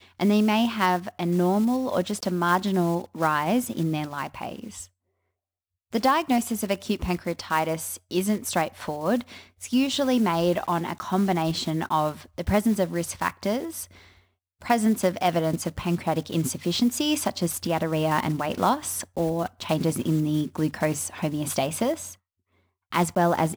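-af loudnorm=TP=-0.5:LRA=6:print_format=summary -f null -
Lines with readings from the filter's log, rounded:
Input Integrated:    -25.4 LUFS
Input True Peak:      -7.6 dBTP
Input LRA:             2.9 LU
Input Threshold:     -35.8 LUFS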